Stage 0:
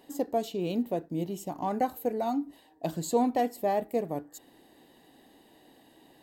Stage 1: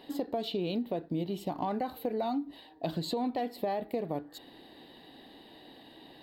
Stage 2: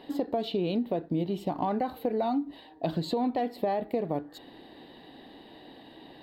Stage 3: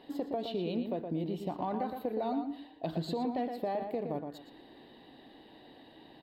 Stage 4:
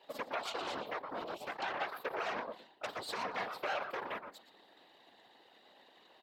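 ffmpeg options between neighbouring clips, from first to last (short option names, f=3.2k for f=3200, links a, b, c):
-af "highshelf=f=5.2k:t=q:w=3:g=-8.5,alimiter=limit=-22dB:level=0:latency=1:release=29,acompressor=threshold=-34dB:ratio=5,volume=4.5dB"
-af "highshelf=f=4.1k:g=-9,volume=4dB"
-filter_complex "[0:a]asplit=2[a][b];[b]adelay=117,lowpass=f=3.5k:p=1,volume=-6dB,asplit=2[c][d];[d]adelay=117,lowpass=f=3.5k:p=1,volume=0.23,asplit=2[e][f];[f]adelay=117,lowpass=f=3.5k:p=1,volume=0.23[g];[a][c][e][g]amix=inputs=4:normalize=0,volume=-6dB"
-af "aeval=exprs='0.0891*(cos(1*acos(clip(val(0)/0.0891,-1,1)))-cos(1*PI/2))+0.0316*(cos(8*acos(clip(val(0)/0.0891,-1,1)))-cos(8*PI/2))':c=same,highpass=600,afftfilt=real='hypot(re,im)*cos(2*PI*random(0))':imag='hypot(re,im)*sin(2*PI*random(1))':win_size=512:overlap=0.75,volume=2dB"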